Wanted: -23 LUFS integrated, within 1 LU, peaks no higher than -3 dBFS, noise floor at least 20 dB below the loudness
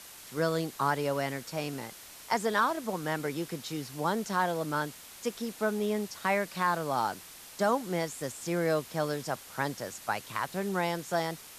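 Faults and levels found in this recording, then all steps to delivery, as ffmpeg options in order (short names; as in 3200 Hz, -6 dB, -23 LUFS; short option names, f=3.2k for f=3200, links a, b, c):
noise floor -49 dBFS; noise floor target -52 dBFS; loudness -32.0 LUFS; peak -14.5 dBFS; loudness target -23.0 LUFS
-> -af "afftdn=nr=6:nf=-49"
-af "volume=9dB"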